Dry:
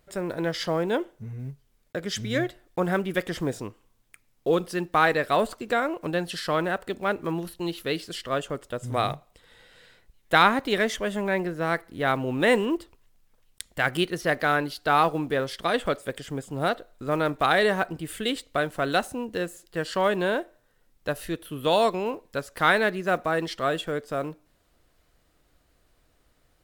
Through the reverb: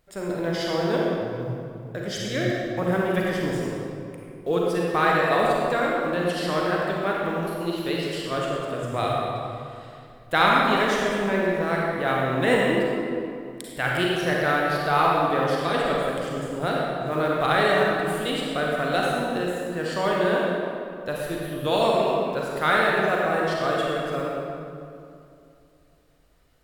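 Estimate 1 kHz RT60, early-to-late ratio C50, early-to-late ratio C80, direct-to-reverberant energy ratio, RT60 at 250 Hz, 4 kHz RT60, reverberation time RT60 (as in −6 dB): 2.4 s, −2.5 dB, −1.0 dB, −3.5 dB, 2.9 s, 1.6 s, 2.5 s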